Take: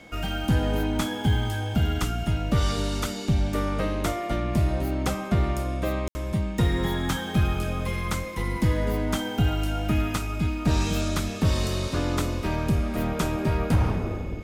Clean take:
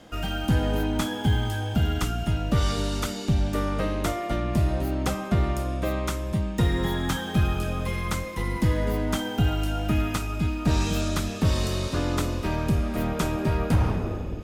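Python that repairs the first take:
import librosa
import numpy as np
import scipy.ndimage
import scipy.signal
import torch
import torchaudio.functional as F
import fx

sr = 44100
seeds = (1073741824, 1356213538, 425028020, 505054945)

y = fx.notch(x, sr, hz=2200.0, q=30.0)
y = fx.fix_ambience(y, sr, seeds[0], print_start_s=0.0, print_end_s=0.5, start_s=6.08, end_s=6.15)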